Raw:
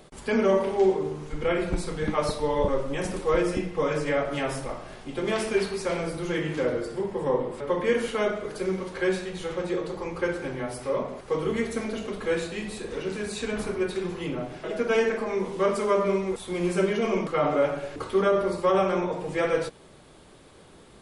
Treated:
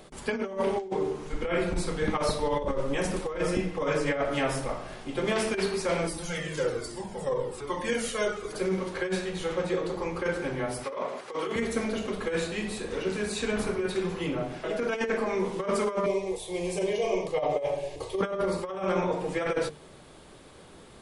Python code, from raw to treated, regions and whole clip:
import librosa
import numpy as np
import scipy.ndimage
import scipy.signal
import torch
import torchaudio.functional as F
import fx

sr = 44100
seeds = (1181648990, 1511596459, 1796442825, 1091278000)

y = fx.chain(x, sr, fx.bass_treble(bass_db=1, treble_db=12),
    fx.comb_cascade(direction='falling', hz=1.2), at=(6.07, 8.53))
y = fx.chain(y, sr, fx.weighting(curve='A'),
    fx.over_compress(threshold_db=-32.0, ratio=-0.5), at=(10.84, 11.56))
y = fx.chain(y, sr, fx.fixed_phaser(hz=580.0, stages=4),
    fx.doubler(ms=38.0, db=-11), at=(16.06, 18.21))
y = fx.hum_notches(y, sr, base_hz=50, count=9)
y = fx.over_compress(y, sr, threshold_db=-26.0, ratio=-0.5)